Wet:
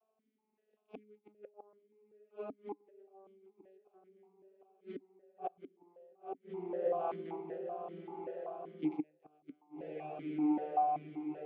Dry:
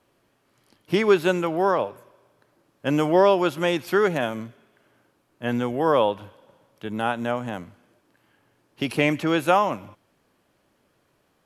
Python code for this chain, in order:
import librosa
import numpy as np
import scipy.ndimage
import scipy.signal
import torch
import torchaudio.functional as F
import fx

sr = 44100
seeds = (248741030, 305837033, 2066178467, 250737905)

p1 = fx.vocoder_glide(x, sr, note=57, semitones=-8)
p2 = fx.small_body(p1, sr, hz=(400.0, 750.0), ring_ms=60, db=13)
p3 = p2 + fx.echo_diffused(p2, sr, ms=1081, feedback_pct=59, wet_db=-5, dry=0)
p4 = fx.gate_flip(p3, sr, shuts_db=-13.0, range_db=-32)
p5 = fx.vowel_held(p4, sr, hz=5.2)
y = F.gain(torch.from_numpy(p5), -3.0).numpy()